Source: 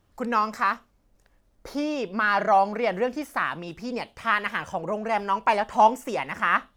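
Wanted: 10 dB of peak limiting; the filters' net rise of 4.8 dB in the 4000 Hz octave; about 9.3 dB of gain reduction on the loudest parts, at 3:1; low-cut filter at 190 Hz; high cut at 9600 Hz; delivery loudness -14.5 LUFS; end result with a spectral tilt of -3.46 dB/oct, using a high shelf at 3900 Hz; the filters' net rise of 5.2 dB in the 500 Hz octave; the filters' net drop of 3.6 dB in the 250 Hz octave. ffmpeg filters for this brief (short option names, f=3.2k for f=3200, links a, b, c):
-af "highpass=190,lowpass=9.6k,equalizer=f=250:t=o:g=-5,equalizer=f=500:t=o:g=7.5,highshelf=f=3.9k:g=4,equalizer=f=4k:t=o:g=4.5,acompressor=threshold=-22dB:ratio=3,volume=16dB,alimiter=limit=-3.5dB:level=0:latency=1"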